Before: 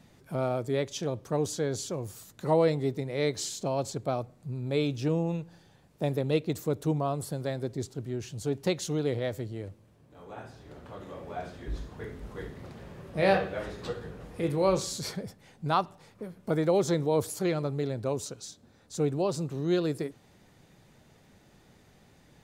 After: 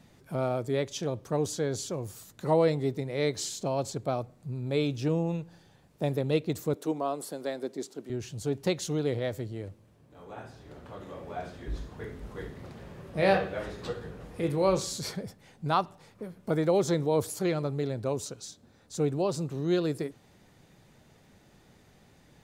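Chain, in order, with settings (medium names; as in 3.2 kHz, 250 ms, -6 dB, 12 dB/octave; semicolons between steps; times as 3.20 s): 6.74–8.10 s: high-pass 230 Hz 24 dB/octave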